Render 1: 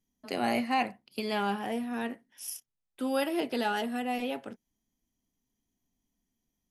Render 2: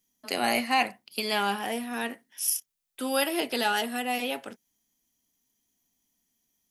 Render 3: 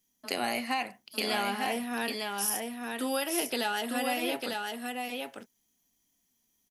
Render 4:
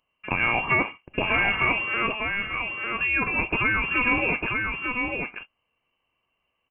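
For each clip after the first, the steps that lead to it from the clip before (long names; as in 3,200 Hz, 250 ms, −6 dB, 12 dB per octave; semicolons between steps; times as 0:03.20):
spectral tilt +2.5 dB per octave; level +4 dB
downward compressor, threshold −27 dBFS, peak gain reduction 9 dB; on a send: single-tap delay 900 ms −4 dB
convolution reverb RT60 0.10 s, pre-delay 3 ms, DRR 19 dB; voice inversion scrambler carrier 3,000 Hz; level +2 dB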